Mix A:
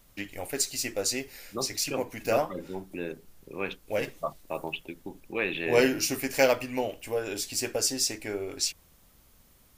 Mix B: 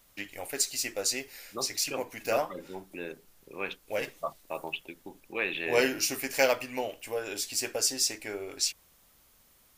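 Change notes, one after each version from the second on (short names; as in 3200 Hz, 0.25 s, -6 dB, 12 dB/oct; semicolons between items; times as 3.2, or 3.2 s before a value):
master: add low shelf 360 Hz -9.5 dB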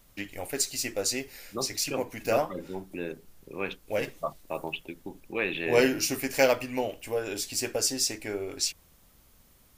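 master: add low shelf 360 Hz +9.5 dB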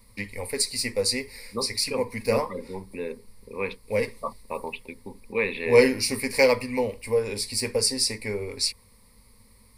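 first voice: add tone controls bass +3 dB, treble +1 dB; master: add ripple EQ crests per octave 0.92, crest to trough 15 dB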